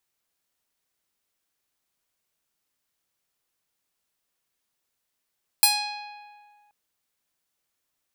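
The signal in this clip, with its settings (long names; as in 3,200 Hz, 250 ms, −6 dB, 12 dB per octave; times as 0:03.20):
Karplus-Strong string G#5, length 1.08 s, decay 1.85 s, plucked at 0.48, bright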